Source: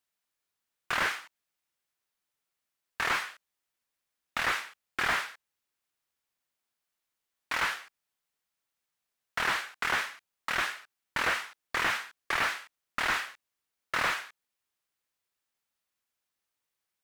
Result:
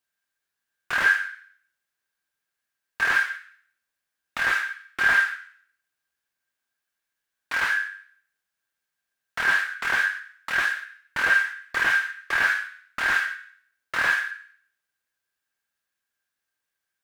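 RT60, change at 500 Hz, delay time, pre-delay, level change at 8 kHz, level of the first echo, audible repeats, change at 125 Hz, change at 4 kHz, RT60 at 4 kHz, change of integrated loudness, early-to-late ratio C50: 0.55 s, 0.0 dB, no echo, 10 ms, +0.5 dB, no echo, no echo, no reading, +1.0 dB, 0.60 s, +7.5 dB, 4.5 dB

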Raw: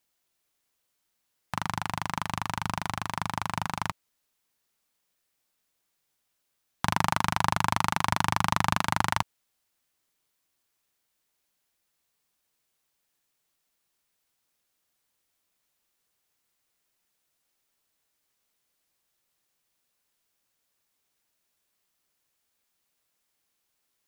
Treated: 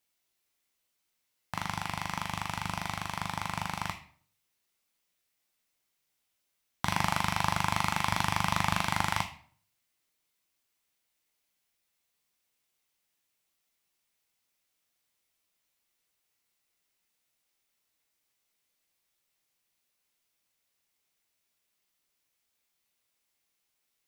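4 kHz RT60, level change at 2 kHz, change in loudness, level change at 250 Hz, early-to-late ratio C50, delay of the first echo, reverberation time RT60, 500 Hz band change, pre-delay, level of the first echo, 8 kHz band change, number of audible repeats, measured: 0.40 s, -2.0 dB, -2.5 dB, -3.0 dB, 9.0 dB, no echo, 0.50 s, -3.0 dB, 10 ms, no echo, -1.5 dB, no echo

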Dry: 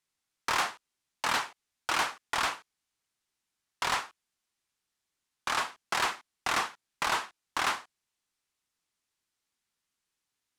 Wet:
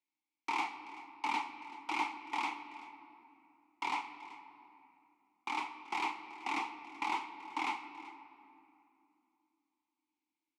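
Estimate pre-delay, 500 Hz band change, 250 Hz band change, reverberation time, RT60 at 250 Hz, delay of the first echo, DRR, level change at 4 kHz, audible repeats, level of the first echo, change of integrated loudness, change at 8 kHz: 4 ms, -12.0 dB, +1.0 dB, 2.7 s, 3.7 s, 382 ms, 8.5 dB, -12.0 dB, 1, -18.0 dB, -7.5 dB, -17.5 dB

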